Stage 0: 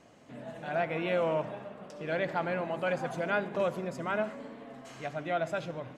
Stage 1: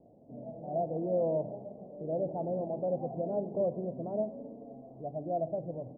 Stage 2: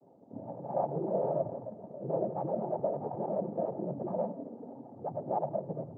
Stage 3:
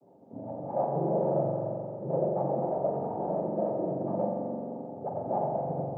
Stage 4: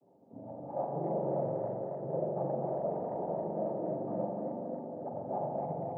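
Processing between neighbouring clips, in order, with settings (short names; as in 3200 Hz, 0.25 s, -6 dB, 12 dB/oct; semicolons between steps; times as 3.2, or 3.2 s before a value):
steep low-pass 740 Hz 48 dB/oct
dynamic EQ 690 Hz, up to +3 dB, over -45 dBFS, Q 6; in parallel at +1 dB: limiter -29.5 dBFS, peak gain reduction 9.5 dB; on the sum: noise vocoder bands 16; gain -5 dB
spring tank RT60 2.4 s, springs 43 ms, chirp 45 ms, DRR -0.5 dB; gain +1 dB
tape echo 0.273 s, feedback 78%, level -4 dB, low-pass 1300 Hz; gain -6.5 dB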